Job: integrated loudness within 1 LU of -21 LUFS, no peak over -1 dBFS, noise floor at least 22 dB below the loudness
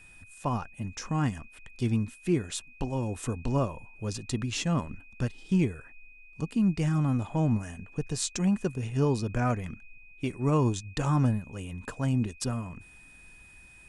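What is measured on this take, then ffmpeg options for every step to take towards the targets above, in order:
steady tone 2.5 kHz; tone level -52 dBFS; loudness -30.0 LUFS; peak level -13.5 dBFS; loudness target -21.0 LUFS
-> -af "bandreject=f=2500:w=30"
-af "volume=2.82"

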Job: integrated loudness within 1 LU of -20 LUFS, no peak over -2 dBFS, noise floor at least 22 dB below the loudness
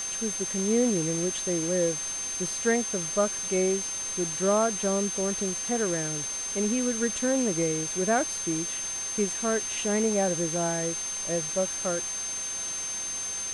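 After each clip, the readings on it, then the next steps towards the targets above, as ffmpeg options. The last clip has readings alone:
steady tone 6.3 kHz; tone level -31 dBFS; noise floor -33 dBFS; noise floor target -49 dBFS; loudness -27.0 LUFS; peak level -13.0 dBFS; loudness target -20.0 LUFS
-> -af "bandreject=f=6300:w=30"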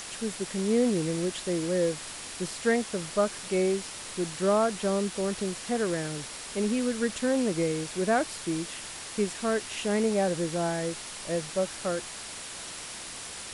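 steady tone not found; noise floor -41 dBFS; noise floor target -52 dBFS
-> -af "afftdn=nr=11:nf=-41"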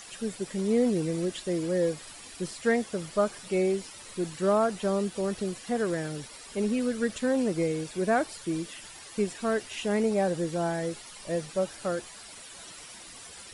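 noise floor -47 dBFS; noise floor target -52 dBFS
-> -af "afftdn=nr=6:nf=-47"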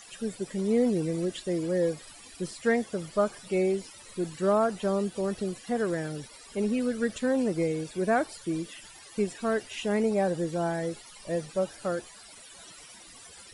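noise floor -50 dBFS; noise floor target -52 dBFS
-> -af "afftdn=nr=6:nf=-50"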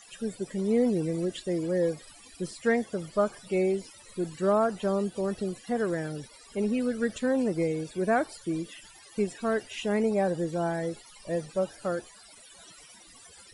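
noise floor -53 dBFS; loudness -29.5 LUFS; peak level -14.0 dBFS; loudness target -20.0 LUFS
-> -af "volume=2.99"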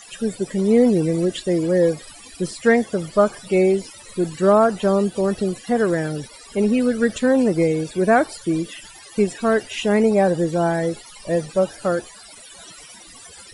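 loudness -20.0 LUFS; peak level -4.5 dBFS; noise floor -43 dBFS

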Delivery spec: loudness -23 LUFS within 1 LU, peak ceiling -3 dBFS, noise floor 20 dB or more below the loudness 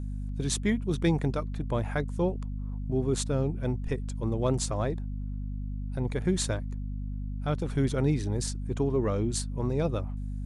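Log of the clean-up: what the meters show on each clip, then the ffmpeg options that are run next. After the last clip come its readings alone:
hum 50 Hz; highest harmonic 250 Hz; hum level -31 dBFS; loudness -30.5 LUFS; peak level -14.0 dBFS; loudness target -23.0 LUFS
-> -af "bandreject=f=50:t=h:w=6,bandreject=f=100:t=h:w=6,bandreject=f=150:t=h:w=6,bandreject=f=200:t=h:w=6,bandreject=f=250:t=h:w=6"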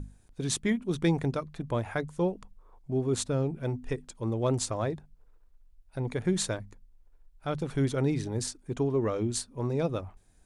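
hum not found; loudness -31.0 LUFS; peak level -15.0 dBFS; loudness target -23.0 LUFS
-> -af "volume=2.51"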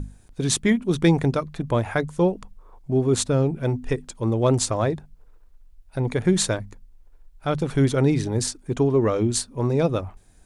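loudness -23.0 LUFS; peak level -7.0 dBFS; noise floor -52 dBFS

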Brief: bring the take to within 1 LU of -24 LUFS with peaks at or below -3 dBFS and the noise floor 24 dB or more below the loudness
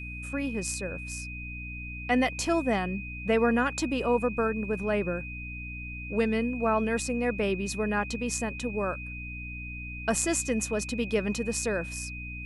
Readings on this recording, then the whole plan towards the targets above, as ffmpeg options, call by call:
hum 60 Hz; highest harmonic 300 Hz; hum level -38 dBFS; steady tone 2.5 kHz; tone level -39 dBFS; loudness -29.5 LUFS; peak level -12.0 dBFS; loudness target -24.0 LUFS
-> -af "bandreject=f=60:t=h:w=6,bandreject=f=120:t=h:w=6,bandreject=f=180:t=h:w=6,bandreject=f=240:t=h:w=6,bandreject=f=300:t=h:w=6"
-af "bandreject=f=2500:w=30"
-af "volume=1.88"

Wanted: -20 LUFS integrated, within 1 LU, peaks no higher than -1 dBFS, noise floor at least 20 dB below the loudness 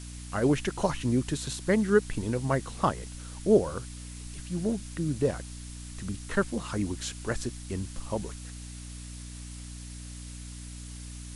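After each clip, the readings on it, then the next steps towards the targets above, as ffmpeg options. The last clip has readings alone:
hum 60 Hz; highest harmonic 300 Hz; hum level -40 dBFS; noise floor -42 dBFS; noise floor target -50 dBFS; loudness -30.0 LUFS; peak level -9.0 dBFS; loudness target -20.0 LUFS
-> -af "bandreject=f=60:t=h:w=4,bandreject=f=120:t=h:w=4,bandreject=f=180:t=h:w=4,bandreject=f=240:t=h:w=4,bandreject=f=300:t=h:w=4"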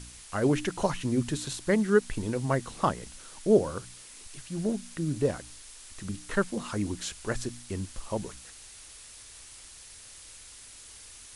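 hum not found; noise floor -49 dBFS; noise floor target -50 dBFS
-> -af "afftdn=nr=6:nf=-49"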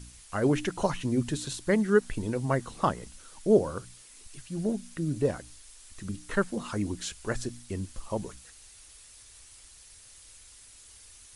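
noise floor -53 dBFS; loudness -30.0 LUFS; peak level -9.5 dBFS; loudness target -20.0 LUFS
-> -af "volume=3.16,alimiter=limit=0.891:level=0:latency=1"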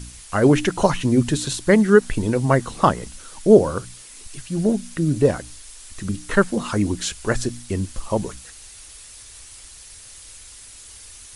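loudness -20.0 LUFS; peak level -1.0 dBFS; noise floor -43 dBFS

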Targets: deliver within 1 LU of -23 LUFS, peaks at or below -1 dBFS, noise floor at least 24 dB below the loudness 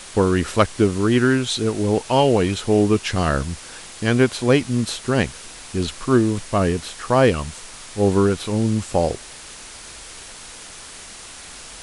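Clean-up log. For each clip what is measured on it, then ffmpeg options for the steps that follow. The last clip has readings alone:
noise floor -39 dBFS; noise floor target -44 dBFS; loudness -20.0 LUFS; peak level -1.5 dBFS; loudness target -23.0 LUFS
-> -af "afftdn=nr=6:nf=-39"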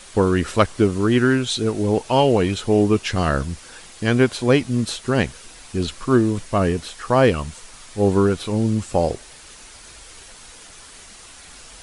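noise floor -43 dBFS; noise floor target -44 dBFS
-> -af "afftdn=nr=6:nf=-43"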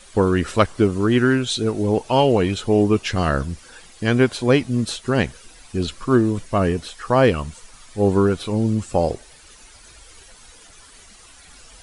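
noise floor -47 dBFS; loudness -20.0 LUFS; peak level -1.5 dBFS; loudness target -23.0 LUFS
-> -af "volume=0.708"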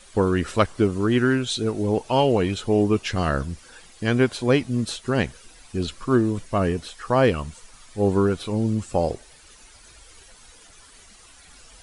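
loudness -23.0 LUFS; peak level -4.5 dBFS; noise floor -50 dBFS

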